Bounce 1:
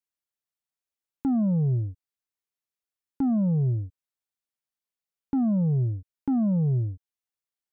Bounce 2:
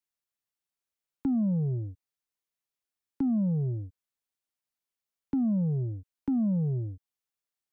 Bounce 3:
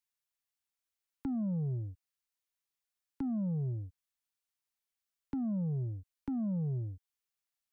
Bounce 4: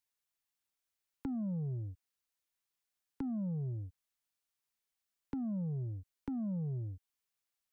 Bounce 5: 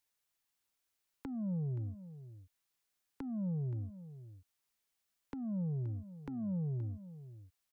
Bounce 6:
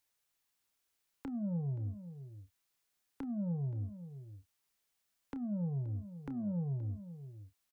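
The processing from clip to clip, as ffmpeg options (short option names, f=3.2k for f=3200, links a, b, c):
-filter_complex "[0:a]acrossover=split=170|450[a][b][c];[a]acompressor=threshold=-36dB:ratio=4[d];[b]acompressor=threshold=-27dB:ratio=4[e];[c]acompressor=threshold=-51dB:ratio=4[f];[d][e][f]amix=inputs=3:normalize=0"
-af "equalizer=f=290:t=o:w=2.8:g=-8"
-af "acompressor=threshold=-39dB:ratio=2,volume=1dB"
-af "alimiter=level_in=12dB:limit=-24dB:level=0:latency=1:release=464,volume=-12dB,aecho=1:1:525:0.188,volume=4dB"
-filter_complex "[0:a]asoftclip=type=tanh:threshold=-33dB,asplit=2[a][b];[b]adelay=29,volume=-12dB[c];[a][c]amix=inputs=2:normalize=0,volume=2dB"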